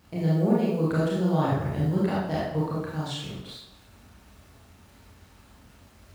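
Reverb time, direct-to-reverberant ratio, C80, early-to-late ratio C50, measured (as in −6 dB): 0.85 s, −7.5 dB, 3.0 dB, −1.0 dB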